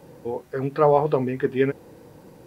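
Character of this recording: noise floor -50 dBFS; spectral tilt -4.5 dB/octave

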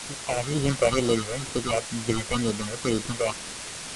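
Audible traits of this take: aliases and images of a low sample rate 1.7 kHz, jitter 0%; phasing stages 6, 2.1 Hz, lowest notch 250–2000 Hz; a quantiser's noise floor 6-bit, dither triangular; IMA ADPCM

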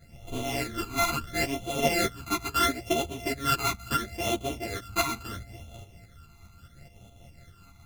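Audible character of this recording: a buzz of ramps at a fixed pitch in blocks of 64 samples; phasing stages 12, 0.74 Hz, lowest notch 540–1700 Hz; tremolo saw up 4.8 Hz, depth 55%; a shimmering, thickened sound

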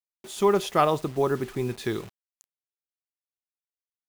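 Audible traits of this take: a quantiser's noise floor 8-bit, dither none

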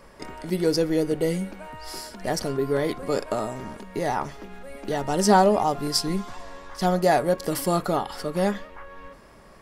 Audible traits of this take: noise floor -49 dBFS; spectral tilt -5.0 dB/octave

